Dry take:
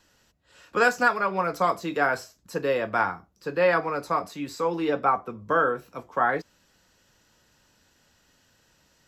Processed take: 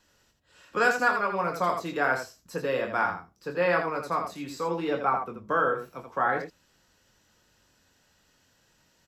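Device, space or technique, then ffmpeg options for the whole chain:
slapback doubling: -filter_complex "[0:a]asplit=3[s0][s1][s2];[s1]adelay=23,volume=0.422[s3];[s2]adelay=83,volume=0.473[s4];[s0][s3][s4]amix=inputs=3:normalize=0,volume=0.668"

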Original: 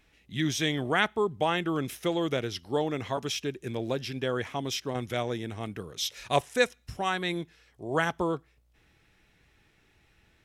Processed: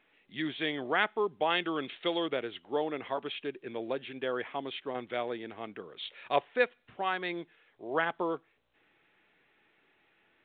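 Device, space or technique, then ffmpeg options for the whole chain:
telephone: -filter_complex "[0:a]asettb=1/sr,asplit=3[s0][s1][s2];[s0]atrim=end=1.504[s3];[s1]atrim=start=1.5:end=2.26,asetpts=PTS-STARTPTS,afade=t=in:d=0.004:c=qsin,afade=t=out:st=0.756:d=0.004:c=qsin,equalizer=f=3800:t=o:w=1.3:g=9.5[s4];[s2]atrim=start=2.256[s5];[s3][s4]acrossfade=d=0.004:c1=hsin:c2=qsin[s6];[s6][s5]acrossfade=d=0.004:c1=qsin:c2=hsin,highpass=310,lowpass=3300,volume=0.794" -ar 8000 -c:a pcm_mulaw

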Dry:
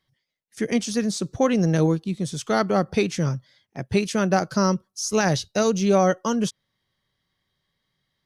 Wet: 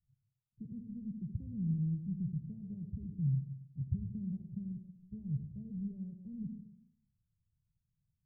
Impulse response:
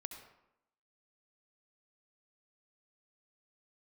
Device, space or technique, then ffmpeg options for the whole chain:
club heard from the street: -filter_complex "[0:a]alimiter=limit=0.133:level=0:latency=1:release=195,lowpass=f=140:w=0.5412,lowpass=f=140:w=1.3066[s0];[1:a]atrim=start_sample=2205[s1];[s0][s1]afir=irnorm=-1:irlink=0,volume=1.68"

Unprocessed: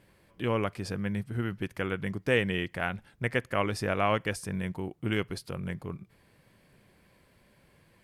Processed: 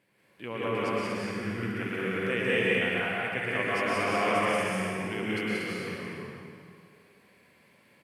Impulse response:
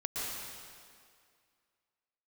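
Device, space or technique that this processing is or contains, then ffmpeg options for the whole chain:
stadium PA: -filter_complex "[0:a]highpass=170,equalizer=f=2300:t=o:w=0.58:g=5.5,aecho=1:1:180.8|233.2:0.891|0.794[s0];[1:a]atrim=start_sample=2205[s1];[s0][s1]afir=irnorm=-1:irlink=0,volume=0.473"

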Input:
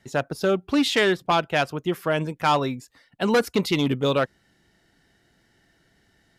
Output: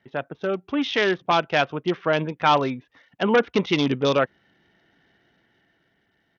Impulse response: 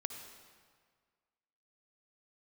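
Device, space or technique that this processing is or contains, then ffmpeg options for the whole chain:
Bluetooth headset: -af "highpass=f=170:p=1,dynaudnorm=f=200:g=11:m=2.24,aresample=8000,aresample=44100,volume=0.668" -ar 48000 -c:a sbc -b:a 64k

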